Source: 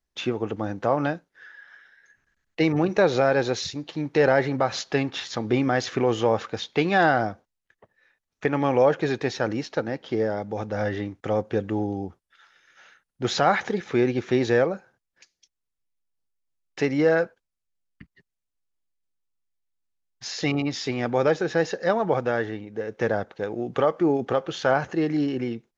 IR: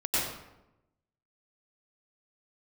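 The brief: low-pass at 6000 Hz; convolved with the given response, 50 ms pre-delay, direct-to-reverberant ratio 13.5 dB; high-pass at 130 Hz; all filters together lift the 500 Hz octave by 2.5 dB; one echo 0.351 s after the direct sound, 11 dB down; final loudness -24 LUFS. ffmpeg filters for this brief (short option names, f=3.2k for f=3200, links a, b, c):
-filter_complex "[0:a]highpass=130,lowpass=6k,equalizer=f=500:t=o:g=3,aecho=1:1:351:0.282,asplit=2[a][b];[1:a]atrim=start_sample=2205,adelay=50[c];[b][c]afir=irnorm=-1:irlink=0,volume=-23.5dB[d];[a][d]amix=inputs=2:normalize=0,volume=-1.5dB"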